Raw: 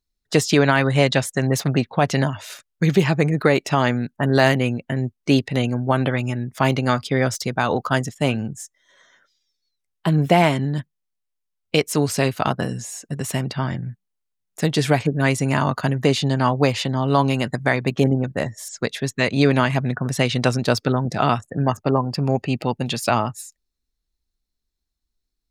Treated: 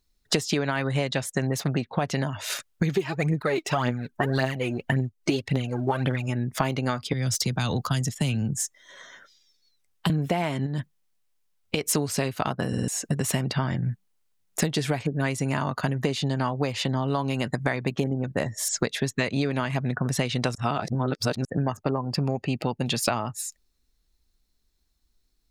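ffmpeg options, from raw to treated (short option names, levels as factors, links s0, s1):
-filter_complex "[0:a]asplit=3[s0][s1][s2];[s0]afade=t=out:st=2.95:d=0.02[s3];[s1]aphaser=in_gain=1:out_gain=1:delay=3.3:decay=0.64:speed=1.8:type=triangular,afade=t=in:st=2.95:d=0.02,afade=t=out:st=6.27:d=0.02[s4];[s2]afade=t=in:st=6.27:d=0.02[s5];[s3][s4][s5]amix=inputs=3:normalize=0,asettb=1/sr,asplit=3[s6][s7][s8];[s6]atrim=end=7.134[s9];[s7]atrim=start=7.13:end=10.1,asetpts=PTS-STARTPTS,afade=t=in:d=0.004:c=qsin,afade=t=out:st=2.966:d=0.004:c=qsin,acrossover=split=190|3000[s10][s11][s12];[s11]acompressor=threshold=0.0141:ratio=4:attack=3.2:release=140:knee=2.83:detection=peak[s13];[s10][s13][s12]amix=inputs=3:normalize=0[s14];[s8]atrim=start=10.096[s15];[s9][s14]acrossfade=d=0.004:c1=hsin:c2=qsin[s16];[s16][s15]acrossfade=d=0.004:c1=qsin:c2=hsin,asettb=1/sr,asplit=3[s17][s18][s19];[s17]atrim=end=10.664[s20];[s18]atrim=start=10.66:end=11.86,asetpts=PTS-STARTPTS,afade=t=in:d=0.004:c=qsin,afade=t=out:st=1.196:d=0.004:c=qsin,acompressor=threshold=0.0501:ratio=6:attack=3.2:release=140:knee=1:detection=peak[s21];[s19]atrim=start=11.856[s22];[s20][s21]acrossfade=d=0.004:c1=hsin:c2=qsin[s23];[s23][s22]acrossfade=d=0.004:c1=qsin:c2=hsin,asplit=7[s24][s25][s26][s27][s28][s29][s30];[s24]atrim=end=12.732[s31];[s25]atrim=start=12.678:end=12.732[s32];[s26]atrim=start=12.678:end=12.732[s33];[s27]atrim=start=12.678:end=12.732[s34];[s28]atrim=start=12.878:end=20.552[s35];[s29]atrim=start=20.548:end=21.452,asetpts=PTS-STARTPTS,areverse[s36];[s30]atrim=start=21.448[s37];[s31][s32]acrossfade=d=0.004:c1=hsin:c2=hsin[s38];[s38][s33]acrossfade=d=0.004:c1=hsin:c2=hsin[s39];[s39][s34]acrossfade=d=0.004:c1=hsin:c2=hsin[s40];[s40][s35]acrossfade=d=0.004:c1=hsin:c2=hsin[s41];[s41][s36]acrossfade=d=0.004:c1=hsin:c2=hsin[s42];[s42][s37]acrossfade=d=0.004:c1=hsin:c2=hsin,acompressor=threshold=0.0316:ratio=16,volume=2.66"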